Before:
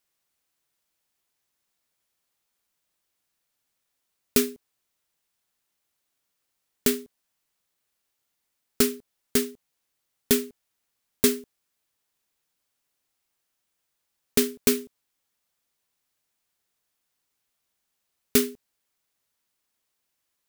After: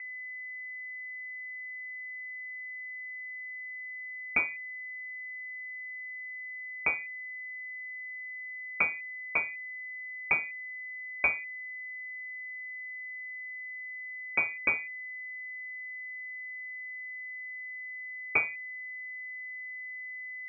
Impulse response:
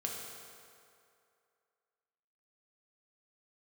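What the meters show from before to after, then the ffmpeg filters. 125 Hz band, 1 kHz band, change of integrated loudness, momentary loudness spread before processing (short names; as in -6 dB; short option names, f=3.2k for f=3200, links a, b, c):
under -10 dB, +4.0 dB, -9.5 dB, 10 LU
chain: -af "aeval=exprs='val(0)+0.0158*sin(2*PI*690*n/s)':c=same,aemphasis=mode=production:type=bsi,lowpass=f=2.3k:t=q:w=0.5098,lowpass=f=2.3k:t=q:w=0.6013,lowpass=f=2.3k:t=q:w=0.9,lowpass=f=2.3k:t=q:w=2.563,afreqshift=-2700,volume=-1.5dB"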